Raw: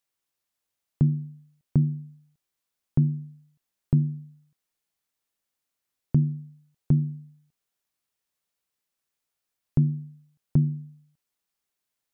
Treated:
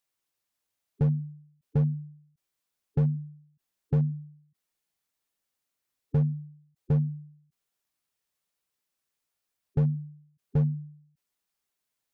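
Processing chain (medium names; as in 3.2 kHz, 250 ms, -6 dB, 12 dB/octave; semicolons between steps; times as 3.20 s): spectral gate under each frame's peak -15 dB strong; hard clipper -19.5 dBFS, distortion -11 dB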